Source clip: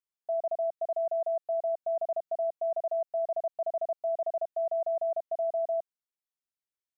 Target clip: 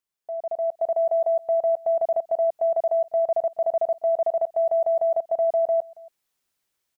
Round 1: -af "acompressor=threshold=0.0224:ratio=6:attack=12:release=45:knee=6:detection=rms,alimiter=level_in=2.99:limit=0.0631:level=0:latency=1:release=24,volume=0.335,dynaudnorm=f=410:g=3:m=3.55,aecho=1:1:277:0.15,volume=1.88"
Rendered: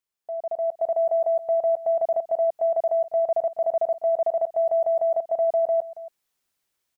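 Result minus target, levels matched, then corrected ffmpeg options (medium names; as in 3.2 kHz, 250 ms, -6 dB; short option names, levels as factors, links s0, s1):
echo-to-direct +6.5 dB
-af "acompressor=threshold=0.0224:ratio=6:attack=12:release=45:knee=6:detection=rms,alimiter=level_in=2.99:limit=0.0631:level=0:latency=1:release=24,volume=0.335,dynaudnorm=f=410:g=3:m=3.55,aecho=1:1:277:0.0708,volume=1.88"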